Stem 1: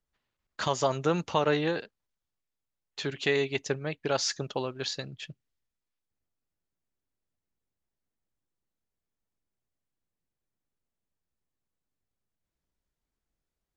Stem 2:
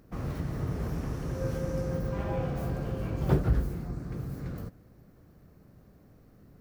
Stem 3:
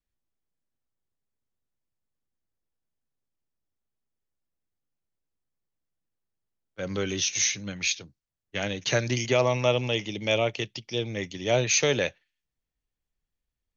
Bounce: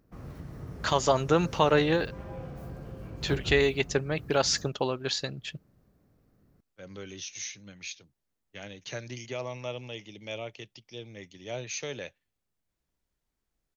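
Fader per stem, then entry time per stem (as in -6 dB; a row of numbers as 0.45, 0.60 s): +3.0, -9.0, -13.0 dB; 0.25, 0.00, 0.00 s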